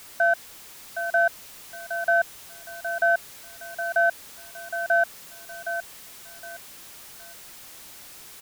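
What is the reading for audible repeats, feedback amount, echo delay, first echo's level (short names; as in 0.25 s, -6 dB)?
3, 28%, 0.765 s, -9.0 dB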